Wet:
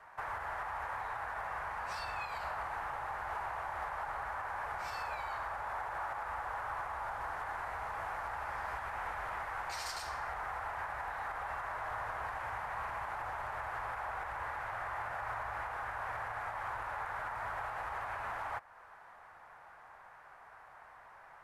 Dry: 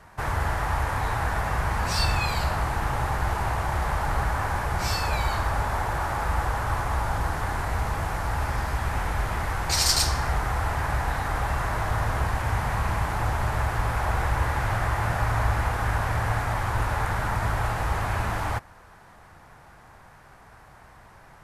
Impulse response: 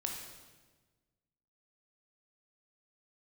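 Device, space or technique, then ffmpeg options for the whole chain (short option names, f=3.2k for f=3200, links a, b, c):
DJ mixer with the lows and highs turned down: -filter_complex "[0:a]acrossover=split=570 2300:gain=0.1 1 0.2[a][b][c];[a][b][c]amix=inputs=3:normalize=0,alimiter=level_in=5dB:limit=-24dB:level=0:latency=1:release=248,volume=-5dB,volume=-1.5dB"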